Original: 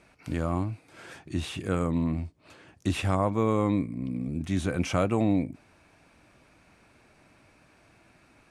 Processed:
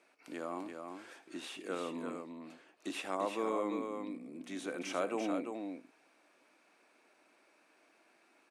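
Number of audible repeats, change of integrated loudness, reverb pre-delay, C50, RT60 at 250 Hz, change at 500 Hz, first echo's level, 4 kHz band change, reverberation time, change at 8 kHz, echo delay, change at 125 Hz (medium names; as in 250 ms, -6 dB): 2, -11.0 dB, no reverb, no reverb, no reverb, -7.0 dB, -17.0 dB, -7.0 dB, no reverb, -7.0 dB, 77 ms, -29.0 dB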